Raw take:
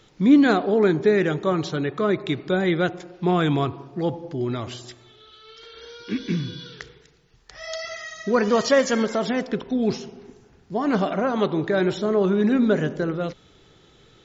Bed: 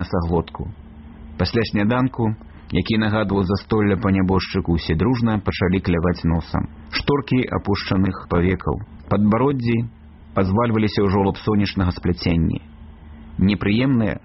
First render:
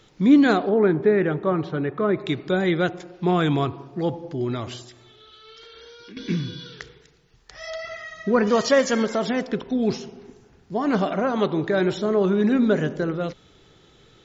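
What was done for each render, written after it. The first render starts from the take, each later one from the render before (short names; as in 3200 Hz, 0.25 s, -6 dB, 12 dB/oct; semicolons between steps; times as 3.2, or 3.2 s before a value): 0.69–2.17 LPF 2000 Hz; 4.82–6.17 compressor, threshold -41 dBFS; 7.7–8.47 tone controls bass +4 dB, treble -13 dB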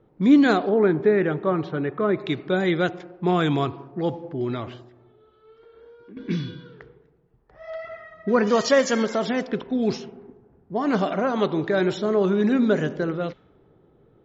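low shelf 76 Hz -8 dB; low-pass opened by the level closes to 700 Hz, open at -18 dBFS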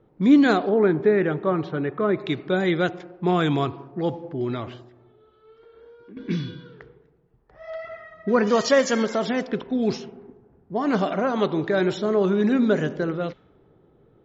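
nothing audible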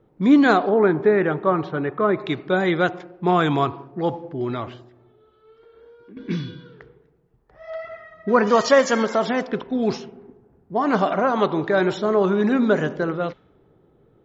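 dynamic EQ 1000 Hz, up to +7 dB, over -37 dBFS, Q 0.91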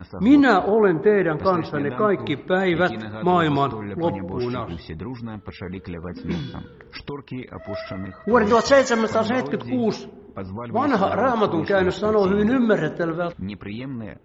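add bed -14 dB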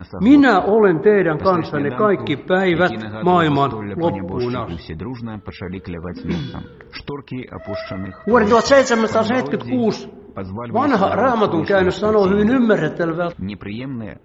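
gain +4 dB; limiter -2 dBFS, peak gain reduction 3 dB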